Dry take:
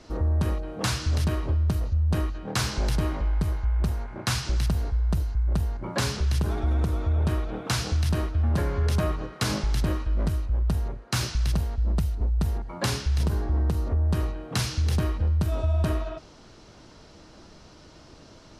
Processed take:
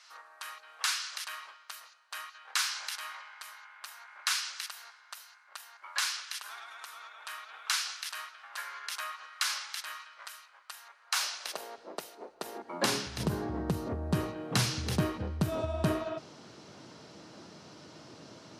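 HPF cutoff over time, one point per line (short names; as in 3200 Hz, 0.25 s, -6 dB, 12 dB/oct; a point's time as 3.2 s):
HPF 24 dB/oct
10.95 s 1200 Hz
11.67 s 400 Hz
12.37 s 400 Hz
13.26 s 120 Hz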